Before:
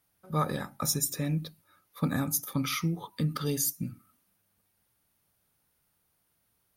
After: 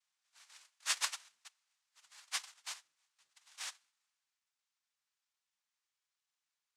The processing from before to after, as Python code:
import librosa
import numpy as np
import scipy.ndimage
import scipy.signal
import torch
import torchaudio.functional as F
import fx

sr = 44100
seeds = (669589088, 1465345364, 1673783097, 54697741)

y = fx.cheby2_highpass(x, sr, hz=fx.steps((0.0, 1200.0), (2.72, 2300.0)), order=4, stop_db=70)
y = fx.noise_vocoder(y, sr, seeds[0], bands=2)
y = y * 10.0 ** (-1.0 / 20.0)